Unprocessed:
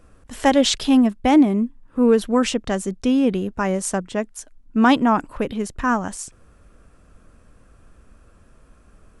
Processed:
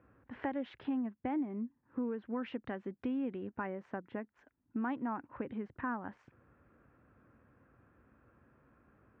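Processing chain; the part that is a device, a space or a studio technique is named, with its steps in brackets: bass amplifier (compressor 4:1, threshold -27 dBFS, peak gain reduction 14.5 dB; speaker cabinet 82–2000 Hz, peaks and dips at 84 Hz -7 dB, 180 Hz -8 dB, 440 Hz -4 dB, 640 Hz -6 dB, 1200 Hz -4 dB); 2.26–3.67 bell 3800 Hz +5.5 dB 1.4 oct; gain -6.5 dB

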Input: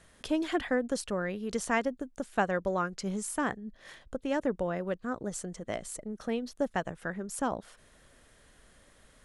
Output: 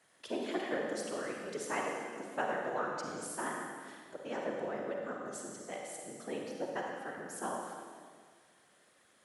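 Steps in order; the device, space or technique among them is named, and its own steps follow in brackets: whispering ghost (whisperiser; HPF 300 Hz 12 dB/oct; reverb RT60 1.8 s, pre-delay 39 ms, DRR -0.5 dB); gain -7.5 dB

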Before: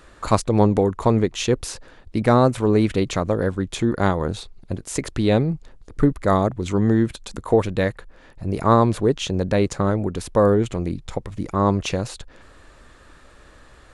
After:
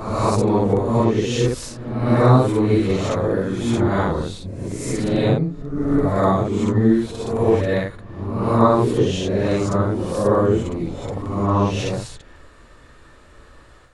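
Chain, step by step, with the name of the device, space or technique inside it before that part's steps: reverse reverb (reverse; reverb RT60 1.0 s, pre-delay 37 ms, DRR -7 dB; reverse); gain -7 dB

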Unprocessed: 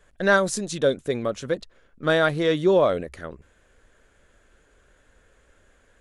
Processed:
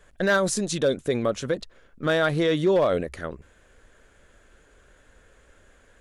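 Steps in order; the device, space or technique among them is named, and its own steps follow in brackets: clipper into limiter (hard clip -12.5 dBFS, distortion -20 dB; limiter -17.5 dBFS, peak gain reduction 5 dB); gain +3 dB

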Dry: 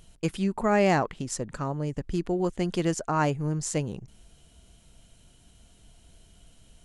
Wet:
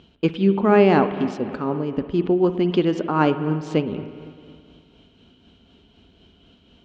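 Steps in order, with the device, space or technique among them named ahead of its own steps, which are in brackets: combo amplifier with spring reverb and tremolo (spring tank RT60 2.3 s, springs 51/56 ms, chirp 55 ms, DRR 9.5 dB; tremolo 4 Hz, depth 35%; speaker cabinet 85–3800 Hz, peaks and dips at 130 Hz -9 dB, 250 Hz +8 dB, 390 Hz +6 dB, 650 Hz -4 dB, 1900 Hz -6 dB, 3100 Hz +3 dB); gain +7 dB

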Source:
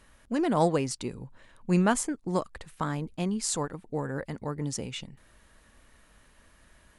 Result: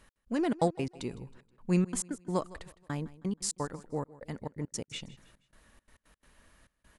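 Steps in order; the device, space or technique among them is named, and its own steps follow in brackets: trance gate with a delay (step gate "x..xxx.x.x.xxxx" 171 bpm -60 dB; feedback echo 0.159 s, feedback 41%, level -19.5 dB); gain -2.5 dB

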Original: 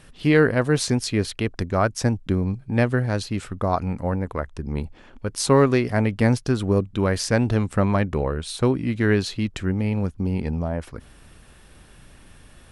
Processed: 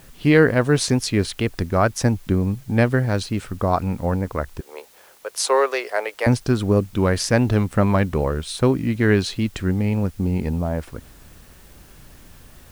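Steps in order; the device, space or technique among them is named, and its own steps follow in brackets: 4.6–6.27 steep high-pass 440 Hz 36 dB/oct; plain cassette with noise reduction switched in (mismatched tape noise reduction decoder only; wow and flutter; white noise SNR 32 dB); gain +2.5 dB

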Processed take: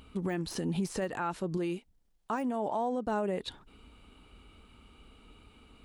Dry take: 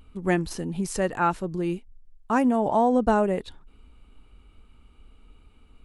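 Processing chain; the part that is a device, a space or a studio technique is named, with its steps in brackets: broadcast voice chain (HPF 120 Hz 6 dB/oct; de-esser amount 85%; compressor 4:1, threshold -31 dBFS, peak gain reduction 12 dB; bell 3900 Hz +3 dB 1 oct; limiter -27.5 dBFS, peak gain reduction 6.5 dB); 1.57–3.07 low shelf 180 Hz -8 dB; gain +4 dB

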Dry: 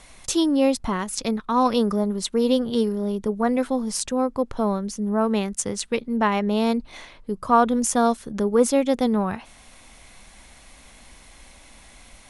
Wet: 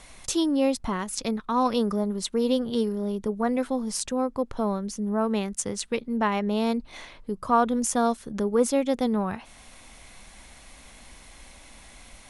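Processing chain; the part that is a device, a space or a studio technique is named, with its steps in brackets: parallel compression (in parallel at -4 dB: compressor, threshold -35 dBFS, peak gain reduction 21.5 dB); on the sum: gain -4.5 dB

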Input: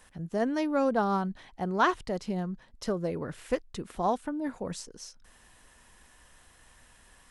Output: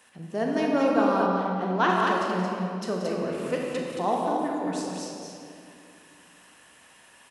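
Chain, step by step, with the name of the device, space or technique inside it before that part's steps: stadium PA (HPF 190 Hz 12 dB/oct; bell 2700 Hz +6 dB 0.34 oct; loudspeakers at several distances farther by 62 m -11 dB, 77 m -4 dB; reverb RT60 2.5 s, pre-delay 29 ms, DRR -0.5 dB); 1.26–1.9 air absorption 58 m

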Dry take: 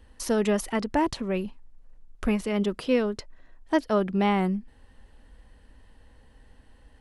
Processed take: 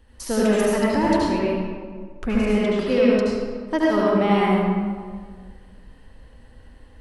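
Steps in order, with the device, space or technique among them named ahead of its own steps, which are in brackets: stairwell (reverb RT60 1.7 s, pre-delay 68 ms, DRR -6.5 dB); 1.39–3.11 LPF 8000 Hz 12 dB/oct; gain -1 dB

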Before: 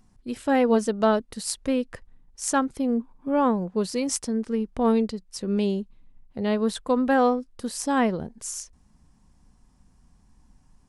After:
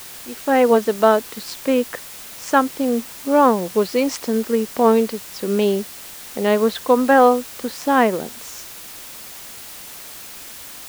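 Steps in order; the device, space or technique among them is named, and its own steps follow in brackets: dictaphone (BPF 310–3300 Hz; AGC gain up to 11.5 dB; wow and flutter 20 cents; white noise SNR 17 dB)

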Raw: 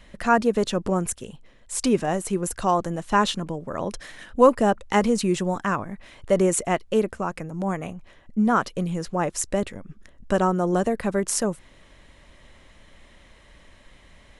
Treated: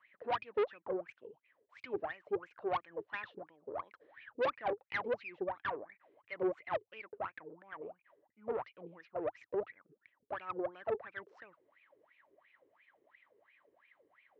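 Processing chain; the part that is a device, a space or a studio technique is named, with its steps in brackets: wah-wah guitar rig (wah 2.9 Hz 400–2500 Hz, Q 15; tube stage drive 32 dB, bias 0.5; speaker cabinet 100–4000 Hz, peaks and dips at 110 Hz +7 dB, 210 Hz -3 dB, 310 Hz +7 dB); gain +3.5 dB

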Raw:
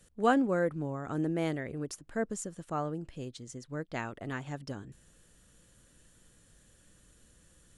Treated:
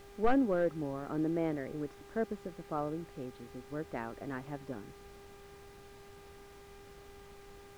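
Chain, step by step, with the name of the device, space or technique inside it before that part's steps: aircraft radio (BPF 320–2400 Hz; hard clip -23 dBFS, distortion -13 dB; buzz 400 Hz, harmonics 6, -56 dBFS -5 dB/oct; white noise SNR 12 dB); RIAA curve playback; gain -2.5 dB

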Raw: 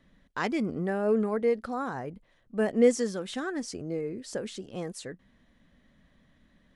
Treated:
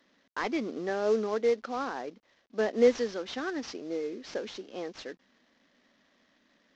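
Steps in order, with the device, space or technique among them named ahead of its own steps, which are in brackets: early wireless headset (HPF 260 Hz 24 dB/oct; CVSD 32 kbps)

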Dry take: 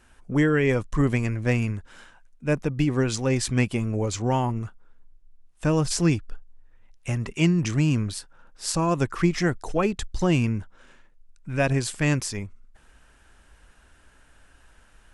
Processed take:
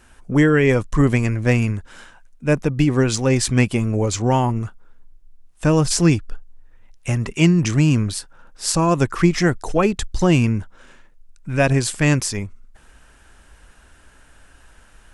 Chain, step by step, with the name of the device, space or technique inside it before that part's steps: exciter from parts (in parallel at -13 dB: HPF 4200 Hz + soft clip -23.5 dBFS, distortion -15 dB); on the sum: gain +6 dB

